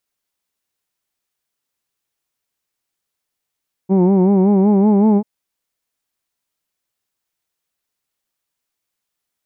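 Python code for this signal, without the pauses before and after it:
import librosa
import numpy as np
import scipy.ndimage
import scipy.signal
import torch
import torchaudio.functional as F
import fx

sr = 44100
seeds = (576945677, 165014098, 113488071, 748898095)

y = fx.vowel(sr, seeds[0], length_s=1.34, word="who'd", hz=184.0, glide_st=2.5, vibrato_hz=5.3, vibrato_st=0.9)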